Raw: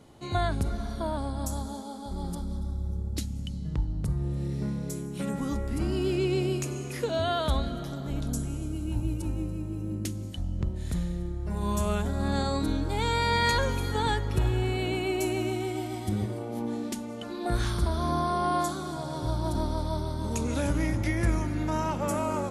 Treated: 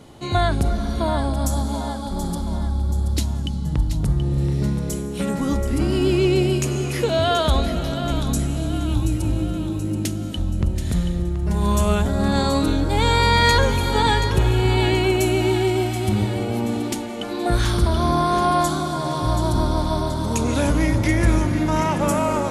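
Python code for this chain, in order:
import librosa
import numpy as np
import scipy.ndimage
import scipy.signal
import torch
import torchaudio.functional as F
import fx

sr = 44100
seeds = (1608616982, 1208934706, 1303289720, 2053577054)

p1 = fx.peak_eq(x, sr, hz=3200.0, db=2.0, octaves=0.77)
p2 = 10.0 ** (-26.0 / 20.0) * np.tanh(p1 / 10.0 ** (-26.0 / 20.0))
p3 = p1 + F.gain(torch.from_numpy(p2), -10.0).numpy()
p4 = fx.echo_split(p3, sr, split_hz=640.0, low_ms=276, high_ms=729, feedback_pct=52, wet_db=-9.5)
y = F.gain(torch.from_numpy(p4), 6.5).numpy()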